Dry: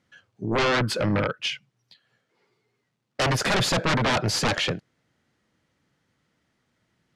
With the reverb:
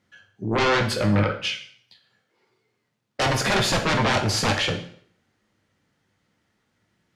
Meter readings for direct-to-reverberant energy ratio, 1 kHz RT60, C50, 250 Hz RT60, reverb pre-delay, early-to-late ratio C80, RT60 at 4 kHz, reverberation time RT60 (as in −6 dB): 3.5 dB, 0.60 s, 9.5 dB, 0.60 s, 5 ms, 13.0 dB, 0.55 s, 0.60 s